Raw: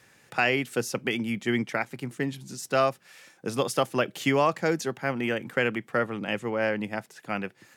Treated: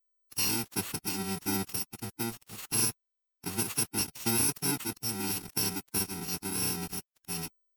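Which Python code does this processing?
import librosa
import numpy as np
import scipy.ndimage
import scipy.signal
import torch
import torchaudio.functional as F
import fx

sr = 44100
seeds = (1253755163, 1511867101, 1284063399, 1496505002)

y = fx.bit_reversed(x, sr, seeds[0], block=64)
y = fx.quant_dither(y, sr, seeds[1], bits=6, dither='none')
y = fx.pitch_keep_formants(y, sr, semitones=-3.0)
y = F.gain(torch.from_numpy(y), -5.0).numpy()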